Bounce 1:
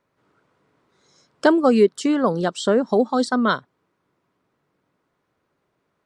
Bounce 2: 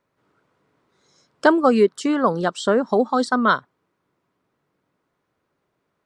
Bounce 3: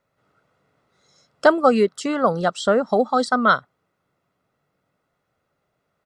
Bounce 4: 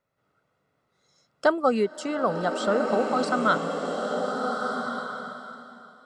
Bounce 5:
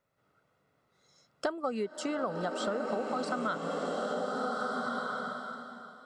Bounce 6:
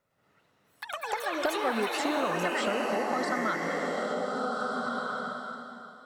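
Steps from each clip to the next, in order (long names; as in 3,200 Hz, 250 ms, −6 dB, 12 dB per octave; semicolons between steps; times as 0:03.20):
dynamic equaliser 1,200 Hz, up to +6 dB, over −34 dBFS, Q 1; level −1.5 dB
comb filter 1.5 ms, depth 44%
slow-attack reverb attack 1,470 ms, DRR 2.5 dB; level −6.5 dB
downward compressor 6 to 1, threshold −30 dBFS, peak gain reduction 14.5 dB
delay with pitch and tempo change per echo 105 ms, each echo +6 semitones, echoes 3; harmonic generator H 4 −37 dB, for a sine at −16.5 dBFS; level +2 dB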